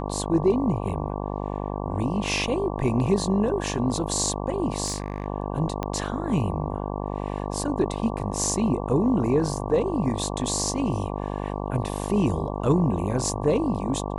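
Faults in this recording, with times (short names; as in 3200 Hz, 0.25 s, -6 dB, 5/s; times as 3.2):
buzz 50 Hz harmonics 23 -30 dBFS
4.85–5.26 clipped -22 dBFS
5.83 pop -14 dBFS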